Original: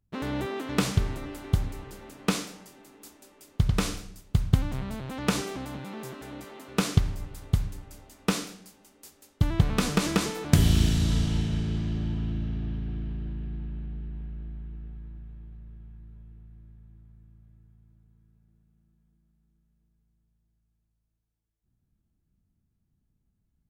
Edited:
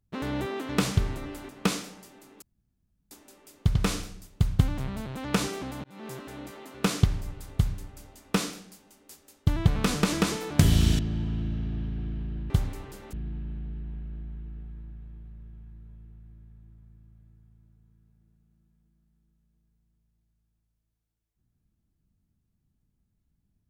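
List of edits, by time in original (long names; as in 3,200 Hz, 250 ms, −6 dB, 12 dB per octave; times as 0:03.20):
0:01.49–0:02.12: move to 0:13.40
0:03.05: splice in room tone 0.69 s
0:05.78–0:06.04: fade in
0:10.93–0:11.89: remove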